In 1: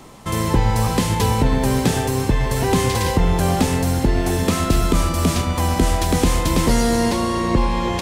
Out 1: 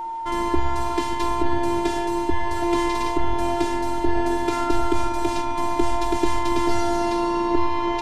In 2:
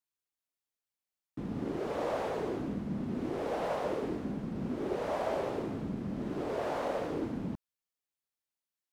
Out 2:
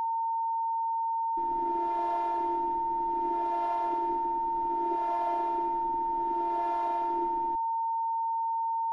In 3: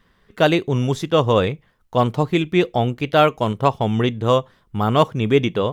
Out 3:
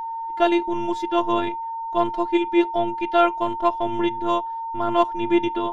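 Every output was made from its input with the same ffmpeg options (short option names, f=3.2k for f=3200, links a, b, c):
-af "afftfilt=real='hypot(re,im)*cos(PI*b)':imag='0':win_size=512:overlap=0.75,aemphasis=mode=reproduction:type=50fm,aeval=exprs='val(0)+0.0447*sin(2*PI*910*n/s)':c=same"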